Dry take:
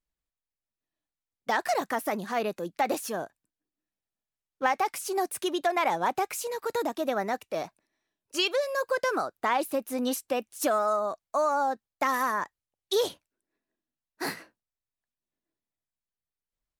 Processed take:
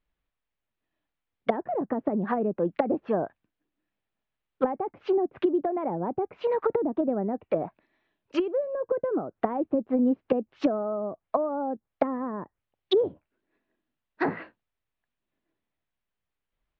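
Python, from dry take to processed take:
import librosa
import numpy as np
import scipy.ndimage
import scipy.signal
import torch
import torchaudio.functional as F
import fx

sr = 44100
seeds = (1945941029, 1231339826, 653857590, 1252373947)

y = scipy.signal.sosfilt(scipy.signal.cheby2(4, 60, 9800.0, 'lowpass', fs=sr, output='sos'), x)
y = fx.env_lowpass_down(y, sr, base_hz=350.0, full_db=-26.5)
y = y * 10.0 ** (8.5 / 20.0)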